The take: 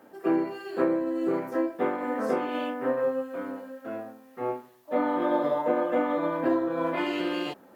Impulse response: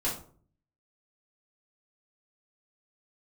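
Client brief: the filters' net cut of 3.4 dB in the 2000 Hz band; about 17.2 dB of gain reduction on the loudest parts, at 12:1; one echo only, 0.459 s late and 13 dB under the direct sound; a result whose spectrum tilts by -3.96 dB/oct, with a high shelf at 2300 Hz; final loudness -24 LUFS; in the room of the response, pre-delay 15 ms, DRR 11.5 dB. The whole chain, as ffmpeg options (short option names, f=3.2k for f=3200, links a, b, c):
-filter_complex "[0:a]equalizer=f=2k:t=o:g=-8,highshelf=f=2.3k:g=6.5,acompressor=threshold=-38dB:ratio=12,aecho=1:1:459:0.224,asplit=2[a][b];[1:a]atrim=start_sample=2205,adelay=15[c];[b][c]afir=irnorm=-1:irlink=0,volume=-18dB[d];[a][d]amix=inputs=2:normalize=0,volume=18dB"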